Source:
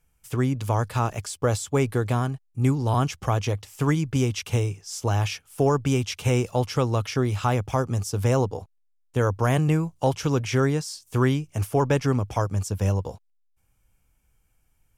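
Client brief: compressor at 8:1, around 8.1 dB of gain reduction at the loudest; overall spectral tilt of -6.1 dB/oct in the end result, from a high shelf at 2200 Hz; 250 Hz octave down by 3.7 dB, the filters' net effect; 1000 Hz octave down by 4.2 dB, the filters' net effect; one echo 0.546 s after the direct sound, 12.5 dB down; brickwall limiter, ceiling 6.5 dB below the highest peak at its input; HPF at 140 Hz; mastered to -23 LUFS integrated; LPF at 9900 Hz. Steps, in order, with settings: HPF 140 Hz; LPF 9900 Hz; bell 250 Hz -3.5 dB; bell 1000 Hz -3.5 dB; high shelf 2200 Hz -8.5 dB; compressor 8:1, threshold -28 dBFS; limiter -23.5 dBFS; echo 0.546 s -12.5 dB; gain +12.5 dB

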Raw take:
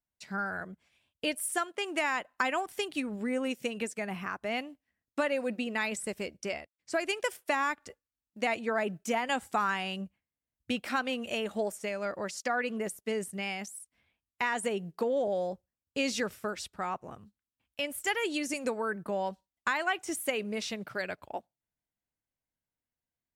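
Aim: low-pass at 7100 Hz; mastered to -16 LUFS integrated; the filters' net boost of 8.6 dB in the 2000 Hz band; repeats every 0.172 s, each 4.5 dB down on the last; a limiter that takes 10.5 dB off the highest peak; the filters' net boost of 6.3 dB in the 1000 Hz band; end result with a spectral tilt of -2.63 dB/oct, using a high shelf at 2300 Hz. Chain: LPF 7100 Hz; bell 1000 Hz +5.5 dB; bell 2000 Hz +7 dB; high shelf 2300 Hz +4 dB; limiter -18 dBFS; feedback echo 0.172 s, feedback 60%, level -4.5 dB; gain +12.5 dB

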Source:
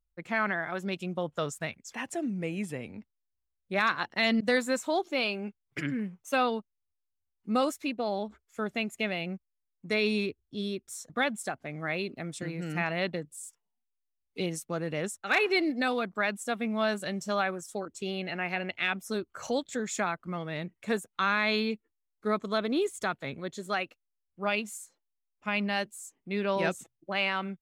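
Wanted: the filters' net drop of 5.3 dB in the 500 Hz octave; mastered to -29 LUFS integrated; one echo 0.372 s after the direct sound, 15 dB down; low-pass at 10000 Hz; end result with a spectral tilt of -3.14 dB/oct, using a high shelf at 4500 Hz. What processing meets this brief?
LPF 10000 Hz; bell 500 Hz -7 dB; high shelf 4500 Hz +7.5 dB; echo 0.372 s -15 dB; gain +2.5 dB

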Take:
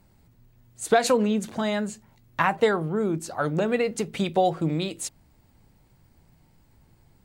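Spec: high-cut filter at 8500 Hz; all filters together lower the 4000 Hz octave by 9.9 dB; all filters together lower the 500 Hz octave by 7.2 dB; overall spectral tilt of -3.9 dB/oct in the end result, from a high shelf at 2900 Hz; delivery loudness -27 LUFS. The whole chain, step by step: LPF 8500 Hz; bell 500 Hz -8.5 dB; high shelf 2900 Hz -5 dB; bell 4000 Hz -8 dB; gain +2 dB

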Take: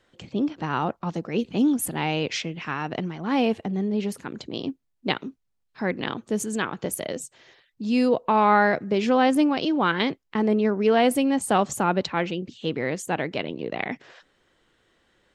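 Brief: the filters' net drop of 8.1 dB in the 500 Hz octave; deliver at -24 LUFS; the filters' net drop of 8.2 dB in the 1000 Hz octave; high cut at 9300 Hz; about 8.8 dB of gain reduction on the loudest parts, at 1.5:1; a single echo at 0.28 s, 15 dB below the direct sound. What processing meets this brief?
LPF 9300 Hz; bell 500 Hz -8 dB; bell 1000 Hz -8 dB; compressor 1.5:1, threshold -45 dBFS; echo 0.28 s -15 dB; gain +12 dB

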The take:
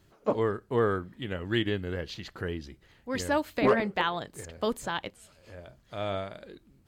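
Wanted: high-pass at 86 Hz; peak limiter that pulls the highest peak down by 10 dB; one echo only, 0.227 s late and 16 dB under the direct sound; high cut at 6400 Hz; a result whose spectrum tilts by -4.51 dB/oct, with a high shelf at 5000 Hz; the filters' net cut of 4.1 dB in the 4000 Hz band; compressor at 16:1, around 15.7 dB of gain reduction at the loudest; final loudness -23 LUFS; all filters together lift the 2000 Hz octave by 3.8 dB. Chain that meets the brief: HPF 86 Hz; LPF 6400 Hz; bell 2000 Hz +7 dB; bell 4000 Hz -5.5 dB; high shelf 5000 Hz -9 dB; compressor 16:1, threshold -33 dBFS; limiter -31 dBFS; echo 0.227 s -16 dB; gain +20.5 dB

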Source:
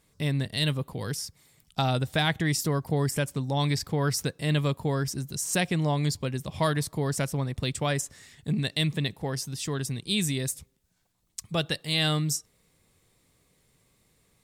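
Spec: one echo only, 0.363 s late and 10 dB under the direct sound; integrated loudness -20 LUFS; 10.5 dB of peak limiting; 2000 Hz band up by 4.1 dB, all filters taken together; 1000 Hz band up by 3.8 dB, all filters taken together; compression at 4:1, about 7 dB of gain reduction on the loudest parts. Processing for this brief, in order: bell 1000 Hz +4 dB; bell 2000 Hz +4 dB; compressor 4:1, threshold -27 dBFS; limiter -24 dBFS; echo 0.363 s -10 dB; gain +14.5 dB

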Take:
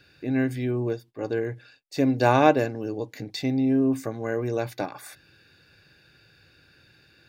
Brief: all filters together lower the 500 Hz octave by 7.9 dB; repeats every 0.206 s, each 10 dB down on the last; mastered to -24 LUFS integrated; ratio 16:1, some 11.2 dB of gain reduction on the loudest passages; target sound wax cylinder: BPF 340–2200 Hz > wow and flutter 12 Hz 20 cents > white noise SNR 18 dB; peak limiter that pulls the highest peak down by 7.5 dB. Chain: bell 500 Hz -9 dB; compressor 16:1, threshold -27 dBFS; limiter -24.5 dBFS; BPF 340–2200 Hz; feedback echo 0.206 s, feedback 32%, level -10 dB; wow and flutter 12 Hz 20 cents; white noise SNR 18 dB; gain +16 dB

